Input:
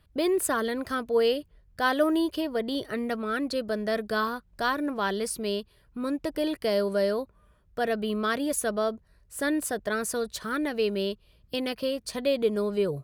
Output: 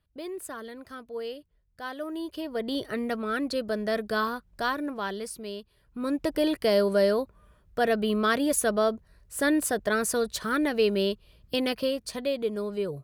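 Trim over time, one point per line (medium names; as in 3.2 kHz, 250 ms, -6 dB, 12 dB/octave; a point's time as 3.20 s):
2.03 s -12 dB
2.71 s 0 dB
4.50 s 0 dB
5.55 s -8 dB
6.22 s +3 dB
11.73 s +3 dB
12.38 s -4 dB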